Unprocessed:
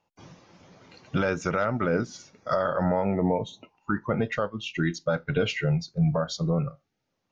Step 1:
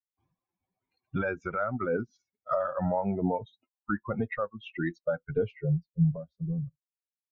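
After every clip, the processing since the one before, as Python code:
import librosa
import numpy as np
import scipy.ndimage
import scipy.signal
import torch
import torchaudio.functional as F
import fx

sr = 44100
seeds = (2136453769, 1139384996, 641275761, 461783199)

y = fx.bin_expand(x, sr, power=2.0)
y = fx.filter_sweep_lowpass(y, sr, from_hz=1900.0, to_hz=120.0, start_s=4.82, end_s=6.97, q=0.94)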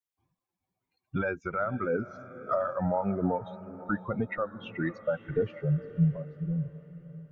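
y = fx.echo_diffused(x, sr, ms=537, feedback_pct=44, wet_db=-15.0)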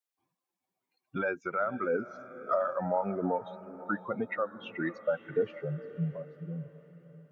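y = scipy.signal.sosfilt(scipy.signal.butter(2, 250.0, 'highpass', fs=sr, output='sos'), x)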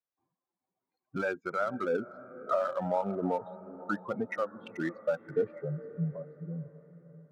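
y = fx.wiener(x, sr, points=15)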